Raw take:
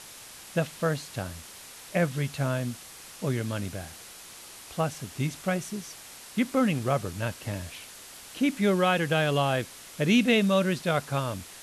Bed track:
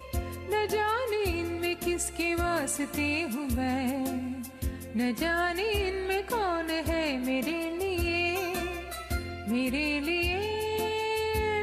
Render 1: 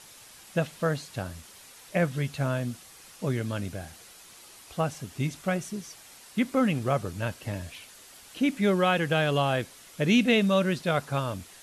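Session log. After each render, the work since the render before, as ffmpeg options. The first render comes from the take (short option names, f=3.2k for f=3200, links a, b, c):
-af "afftdn=nr=6:nf=-47"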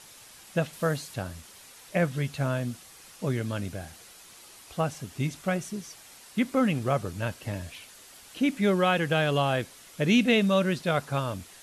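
-filter_complex "[0:a]asettb=1/sr,asplit=3[a][b][c];[a]atrim=end=0.734[d];[b]atrim=start=0.73:end=1.14,asetpts=PTS-STARTPTS,afade=t=in:d=0.004:c=qsin,afade=t=out:st=0.406:d=0.004:c=qsin,highshelf=f=9.3k:g=9.5[e];[c]atrim=start=1.136[f];[d][e]acrossfade=d=0.004:c1=hsin:c2=qsin[g];[g][f]acrossfade=d=0.004:c1=qsin:c2=hsin"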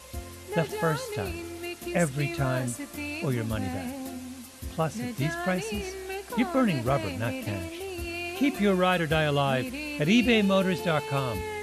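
-filter_complex "[1:a]volume=-6dB[a];[0:a][a]amix=inputs=2:normalize=0"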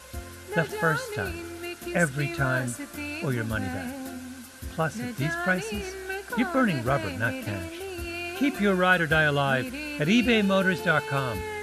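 -af "equalizer=f=1.5k:w=6.8:g=14"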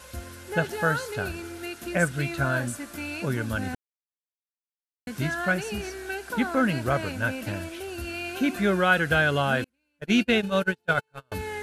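-filter_complex "[0:a]asettb=1/sr,asplit=3[a][b][c];[a]atrim=end=9.644[d];[b]atrim=start=9.64:end=11.32,asetpts=PTS-STARTPTS,afade=t=in:d=0.004:c=qsin,afade=t=out:st=1.676:d=0.004:c=qsin,agate=range=-41dB:threshold=-23dB:ratio=16:release=100:detection=peak[e];[c]atrim=start=11.316[f];[d][e]acrossfade=d=0.004:c1=hsin:c2=qsin[g];[g][f]acrossfade=d=0.004:c1=qsin:c2=hsin,asplit=3[h][i][j];[h]atrim=end=3.75,asetpts=PTS-STARTPTS,afade=t=out:st=3.746:d=0.004:c=hsin[k];[i]atrim=start=3.75:end=5.07,asetpts=PTS-STARTPTS,volume=0[l];[j]atrim=start=5.07,asetpts=PTS-STARTPTS,afade=t=in:d=0.004:c=hsin[m];[k][l][m]concat=n=3:v=0:a=1"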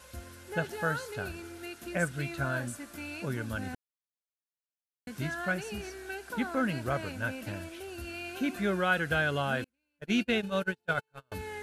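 -af "volume=-6.5dB"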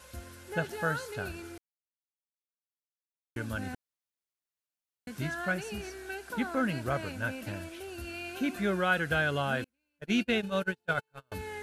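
-filter_complex "[0:a]asplit=3[a][b][c];[a]atrim=end=1.58,asetpts=PTS-STARTPTS,afade=t=out:st=1.576:d=0.004:c=hsin[d];[b]atrim=start=1.58:end=3.36,asetpts=PTS-STARTPTS,volume=0[e];[c]atrim=start=3.36,asetpts=PTS-STARTPTS,afade=t=in:d=0.004:c=hsin[f];[d][e][f]concat=n=3:v=0:a=1"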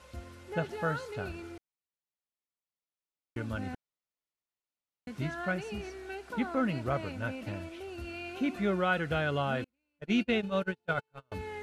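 -af "aemphasis=mode=reproduction:type=50fm,bandreject=f=1.6k:w=7.3"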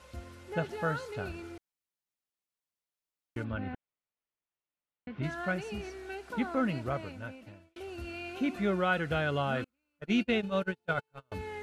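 -filter_complex "[0:a]asplit=3[a][b][c];[a]afade=t=out:st=3.43:d=0.02[d];[b]lowpass=f=3.2k:w=0.5412,lowpass=f=3.2k:w=1.3066,afade=t=in:st=3.43:d=0.02,afade=t=out:st=5.22:d=0.02[e];[c]afade=t=in:st=5.22:d=0.02[f];[d][e][f]amix=inputs=3:normalize=0,asettb=1/sr,asplit=3[g][h][i];[g]atrim=end=9.564[j];[h]atrim=start=9.56:end=10.07,asetpts=PTS-STARTPTS,afade=t=in:d=0.004:c=qsin,afade=t=out:st=0.506:d=0.004:c=qsin,equalizer=f=1.3k:t=o:w=0.37:g=9.5[k];[i]atrim=start=10.066[l];[j][k]acrossfade=d=0.004:c1=hsin:c2=qsin[m];[m][l]acrossfade=d=0.004:c1=qsin:c2=hsin,asplit=2[n][o];[n]atrim=end=7.76,asetpts=PTS-STARTPTS,afade=t=out:st=6.67:d=1.09[p];[o]atrim=start=7.76,asetpts=PTS-STARTPTS,afade=t=in:d=0.004:c=hsin[q];[p][q]concat=n=2:v=0:a=1"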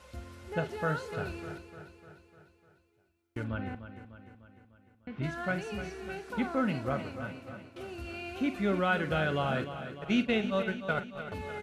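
-filter_complex "[0:a]asplit=2[a][b];[b]adelay=45,volume=-13dB[c];[a][c]amix=inputs=2:normalize=0,aecho=1:1:300|600|900|1200|1500|1800:0.282|0.158|0.0884|0.0495|0.0277|0.0155"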